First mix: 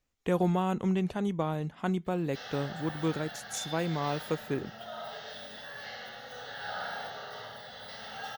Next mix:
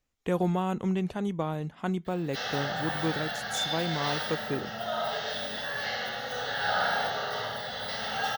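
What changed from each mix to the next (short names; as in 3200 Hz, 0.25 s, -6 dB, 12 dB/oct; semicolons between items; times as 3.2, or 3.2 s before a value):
background +10.0 dB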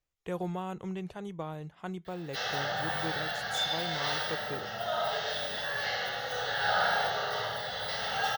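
speech -6.5 dB; master: add bell 240 Hz -15 dB 0.29 oct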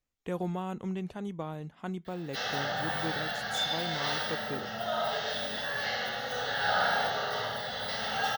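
master: add bell 240 Hz +15 dB 0.29 oct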